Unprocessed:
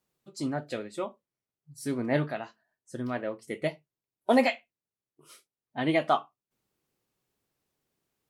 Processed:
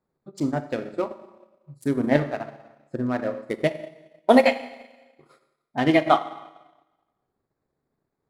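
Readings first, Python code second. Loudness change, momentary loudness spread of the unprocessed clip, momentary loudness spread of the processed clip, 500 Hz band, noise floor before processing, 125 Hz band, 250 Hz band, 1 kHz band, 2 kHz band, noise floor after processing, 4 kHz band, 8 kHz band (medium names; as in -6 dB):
+6.5 dB, 15 LU, 20 LU, +7.0 dB, under -85 dBFS, +5.5 dB, +7.0 dB, +6.5 dB, +5.0 dB, -81 dBFS, +5.0 dB, no reading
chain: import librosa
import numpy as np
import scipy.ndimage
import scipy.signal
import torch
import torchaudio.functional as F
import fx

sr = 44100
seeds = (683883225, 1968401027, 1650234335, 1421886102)

y = fx.wiener(x, sr, points=15)
y = fx.rev_schroeder(y, sr, rt60_s=1.1, comb_ms=28, drr_db=5.0)
y = fx.transient(y, sr, attack_db=4, sustain_db=-8)
y = y * librosa.db_to_amplitude(4.5)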